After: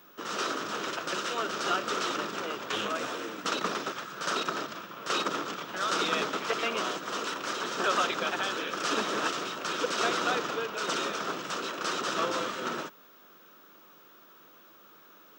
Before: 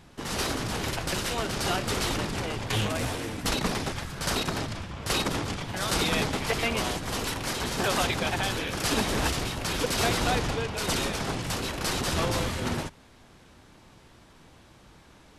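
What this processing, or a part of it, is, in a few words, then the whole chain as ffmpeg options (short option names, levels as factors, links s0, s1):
old television with a line whistle: -af "highpass=f=230:w=0.5412,highpass=f=230:w=1.3066,equalizer=f=250:t=q:w=4:g=-7,equalizer=f=800:t=q:w=4:g=-7,equalizer=f=1300:t=q:w=4:g=9,equalizer=f=2100:t=q:w=4:g=-6,equalizer=f=4500:t=q:w=4:g=-6,lowpass=f=6600:w=0.5412,lowpass=f=6600:w=1.3066,aeval=exprs='val(0)+0.00178*sin(2*PI*15625*n/s)':c=same,volume=0.891"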